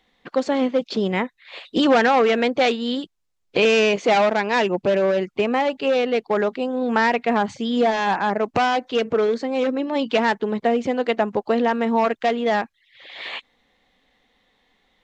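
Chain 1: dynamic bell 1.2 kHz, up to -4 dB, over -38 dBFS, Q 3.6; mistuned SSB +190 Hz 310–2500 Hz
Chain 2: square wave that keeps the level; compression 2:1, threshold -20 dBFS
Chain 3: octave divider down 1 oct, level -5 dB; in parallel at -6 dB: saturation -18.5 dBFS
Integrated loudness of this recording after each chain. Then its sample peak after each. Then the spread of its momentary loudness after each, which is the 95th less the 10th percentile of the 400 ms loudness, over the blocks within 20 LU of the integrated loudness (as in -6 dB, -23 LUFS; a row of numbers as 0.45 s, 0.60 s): -22.0 LUFS, -20.5 LUFS, -18.5 LUFS; -7.0 dBFS, -7.5 dBFS, -4.5 dBFS; 9 LU, 8 LU, 9 LU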